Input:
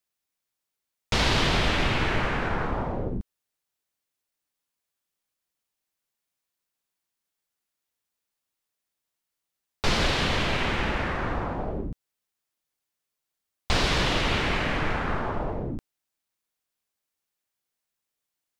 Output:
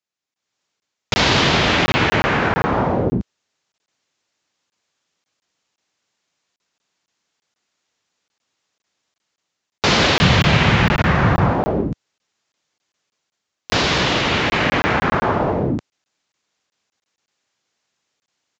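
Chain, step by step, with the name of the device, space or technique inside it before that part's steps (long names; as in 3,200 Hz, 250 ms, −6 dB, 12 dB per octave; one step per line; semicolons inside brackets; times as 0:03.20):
call with lost packets (high-pass filter 100 Hz 12 dB per octave; downsampling to 16,000 Hz; automatic gain control gain up to 16 dB; dropped packets of 20 ms random)
0:10.18–0:11.51: low shelf with overshoot 210 Hz +7.5 dB, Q 1.5
level −1.5 dB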